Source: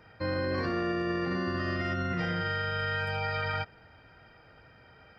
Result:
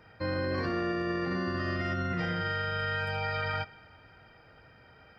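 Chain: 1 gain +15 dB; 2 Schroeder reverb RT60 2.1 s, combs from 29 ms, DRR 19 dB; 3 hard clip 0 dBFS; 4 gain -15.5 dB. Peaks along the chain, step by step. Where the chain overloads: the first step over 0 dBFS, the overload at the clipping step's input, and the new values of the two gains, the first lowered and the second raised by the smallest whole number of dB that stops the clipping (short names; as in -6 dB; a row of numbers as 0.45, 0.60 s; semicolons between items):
-5.5, -5.5, -5.5, -21.0 dBFS; no overload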